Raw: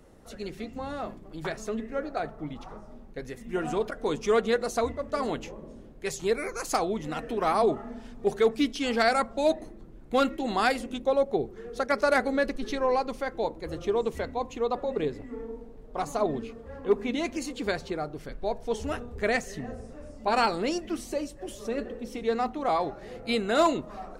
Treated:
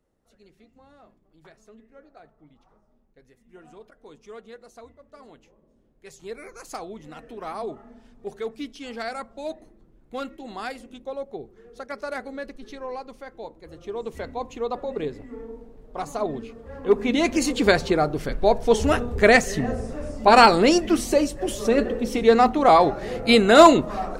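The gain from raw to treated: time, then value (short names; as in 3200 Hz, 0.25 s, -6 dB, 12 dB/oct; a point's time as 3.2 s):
5.67 s -18.5 dB
6.42 s -8.5 dB
13.77 s -8.5 dB
14.29 s 0 dB
16.49 s 0 dB
17.46 s +11.5 dB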